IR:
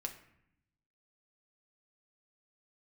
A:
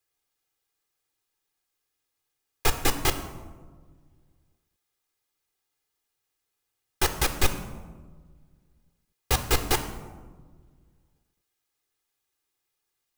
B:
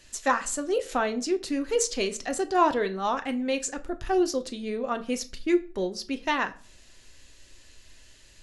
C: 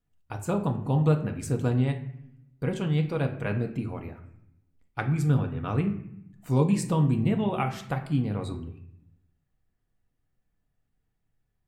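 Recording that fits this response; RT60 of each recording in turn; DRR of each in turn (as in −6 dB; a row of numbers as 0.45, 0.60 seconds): C; 1.5, 0.45, 0.70 seconds; 8.0, 7.5, 3.5 decibels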